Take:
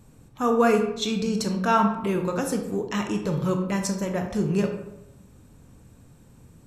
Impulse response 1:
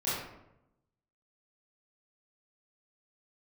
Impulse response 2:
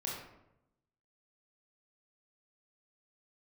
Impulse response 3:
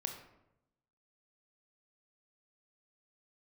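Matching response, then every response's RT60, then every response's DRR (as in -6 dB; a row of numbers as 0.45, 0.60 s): 3; 0.85, 0.85, 0.85 s; -11.5, -4.0, 4.0 dB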